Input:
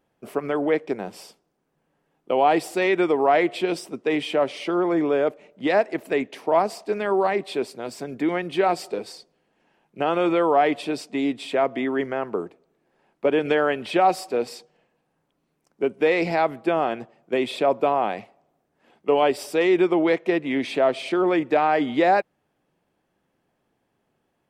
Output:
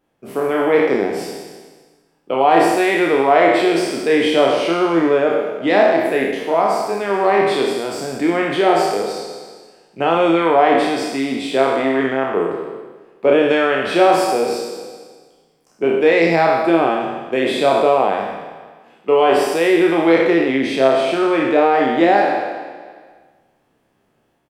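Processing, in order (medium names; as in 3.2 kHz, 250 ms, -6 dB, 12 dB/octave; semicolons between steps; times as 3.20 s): spectral sustain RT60 1.44 s; doubling 30 ms -5 dB; level rider gain up to 5 dB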